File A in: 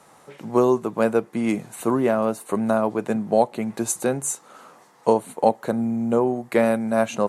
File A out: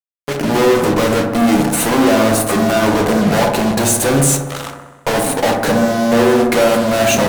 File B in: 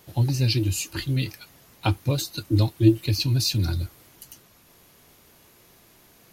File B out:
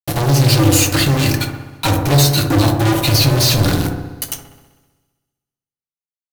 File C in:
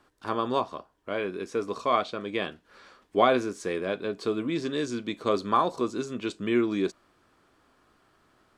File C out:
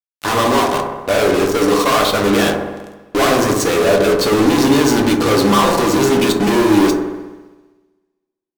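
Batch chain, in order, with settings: high-pass 78 Hz 6 dB/octave; band-stop 7.3 kHz, Q 21; waveshaping leveller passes 3; in parallel at -2 dB: level held to a coarse grid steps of 13 dB; on the sum: fuzz box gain 33 dB, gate -37 dBFS; feedback echo behind a low-pass 64 ms, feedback 68%, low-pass 1.2 kHz, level -3 dB; two-slope reverb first 0.24 s, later 1.5 s, from -21 dB, DRR 6 dB; trim -1 dB

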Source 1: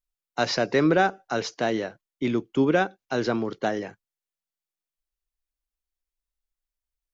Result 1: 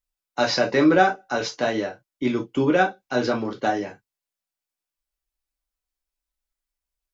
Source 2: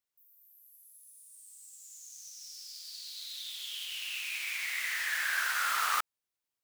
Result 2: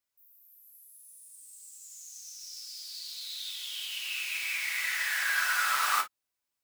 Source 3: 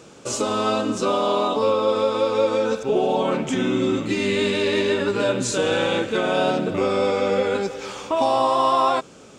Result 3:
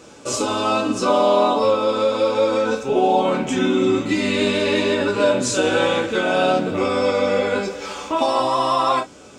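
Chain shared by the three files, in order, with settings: gated-style reverb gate 80 ms falling, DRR 0 dB

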